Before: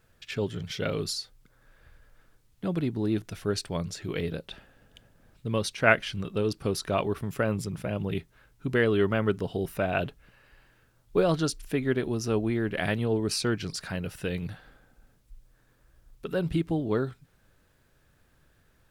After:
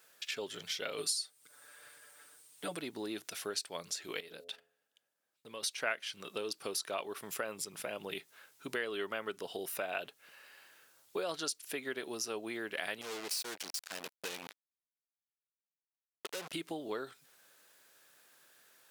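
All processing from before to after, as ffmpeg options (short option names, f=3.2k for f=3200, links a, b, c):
-filter_complex "[0:a]asettb=1/sr,asplit=3[a][b][c];[a]atrim=end=0.974[d];[b]atrim=start=0.97:end=2.77,asetpts=PTS-STARTPTS,afade=t=in:d=0.004:c=qsin,afade=t=out:st=1.796:d=0.004:c=qsin,equalizer=f=8.8k:t=o:w=0.21:g=13.5,aecho=1:1:6.8:0.95,atrim=end_sample=79380[e];[c]atrim=start=2.766[f];[d][e]acrossfade=d=0.004:c1=hsin:c2=qsin[g];[g][f]acrossfade=d=0.004:c1=qsin:c2=hsin,asettb=1/sr,asplit=3[h][i][j];[h]atrim=end=4.204[k];[i]atrim=start=4.2:end=5.63,asetpts=PTS-STARTPTS,afade=t=in:d=0.004:c=qsin,afade=t=out:st=1.426:d=0.004:c=qsin,agate=range=-22dB:threshold=-47dB:ratio=16:release=100:detection=peak,bandreject=f=85.72:t=h:w=4,bandreject=f=171.44:t=h:w=4,bandreject=f=257.16:t=h:w=4,bandreject=f=342.88:t=h:w=4,bandreject=f=428.6:t=h:w=4,bandreject=f=514.32:t=h:w=4,bandreject=f=600.04:t=h:w=4,bandreject=f=685.76:t=h:w=4,acompressor=threshold=-43dB:ratio=2.5:attack=3.2:release=140:knee=1:detection=peak[l];[j]atrim=start=5.626[m];[k][l]acrossfade=d=0.004:c1=hsin:c2=qsin[n];[n][m]acrossfade=d=0.004:c1=qsin:c2=hsin,asettb=1/sr,asplit=3[o][p][q];[o]atrim=end=13.014[r];[p]atrim=start=13.01:end=16.53,asetpts=PTS-STARTPTS,afade=t=in:d=0.004:c=qsin,afade=t=out:st=3.516:d=0.004:c=qsin,highpass=f=52:p=1,acrusher=bits=4:mix=0:aa=0.5,asoftclip=type=hard:threshold=-30dB[s];[q]atrim=start=16.526[t];[r][s]acrossfade=d=0.004:c1=hsin:c2=qsin[u];[u][t]acrossfade=d=0.004:c1=qsin:c2=hsin,highpass=470,highshelf=f=3k:g=11,acompressor=threshold=-39dB:ratio=2.5"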